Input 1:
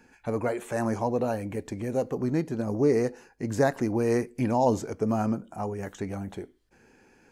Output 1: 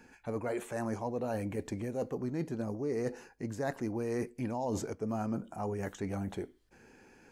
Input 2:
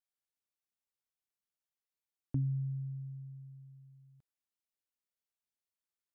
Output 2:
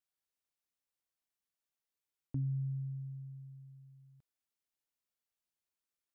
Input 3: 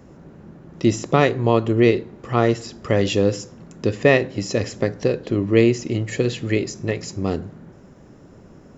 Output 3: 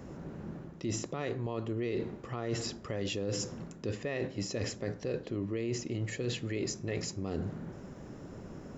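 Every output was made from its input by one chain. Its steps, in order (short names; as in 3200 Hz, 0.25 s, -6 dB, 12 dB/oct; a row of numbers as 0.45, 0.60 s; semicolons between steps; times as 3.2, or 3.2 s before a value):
limiter -13 dBFS; reverse; compressor 6:1, threshold -32 dBFS; reverse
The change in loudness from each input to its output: -8.5, -1.5, -16.0 LU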